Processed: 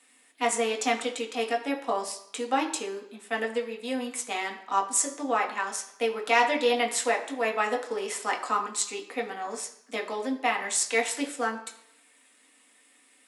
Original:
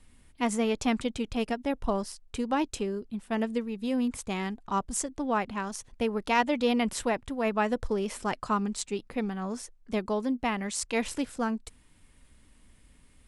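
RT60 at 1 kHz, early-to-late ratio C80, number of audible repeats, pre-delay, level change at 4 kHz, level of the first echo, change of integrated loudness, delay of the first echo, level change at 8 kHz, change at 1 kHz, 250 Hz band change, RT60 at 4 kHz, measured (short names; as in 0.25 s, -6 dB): 0.75 s, 13.0 dB, none, 3 ms, +4.5 dB, none, +2.0 dB, none, +7.5 dB, +4.0 dB, -6.0 dB, 0.75 s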